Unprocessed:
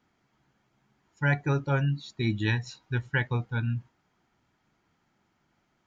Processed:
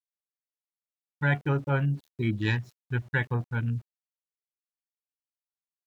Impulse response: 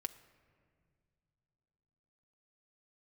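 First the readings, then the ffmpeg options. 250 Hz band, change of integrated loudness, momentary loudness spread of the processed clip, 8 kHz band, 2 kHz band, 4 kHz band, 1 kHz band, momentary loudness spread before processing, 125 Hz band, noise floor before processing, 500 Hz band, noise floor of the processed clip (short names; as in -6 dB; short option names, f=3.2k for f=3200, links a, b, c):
0.0 dB, 0.0 dB, 6 LU, n/a, 0.0 dB, -3.0 dB, 0.0 dB, 6 LU, 0.0 dB, -73 dBFS, 0.0 dB, under -85 dBFS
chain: -af "afwtdn=0.0112,aeval=exprs='val(0)*gte(abs(val(0)),0.00237)':c=same"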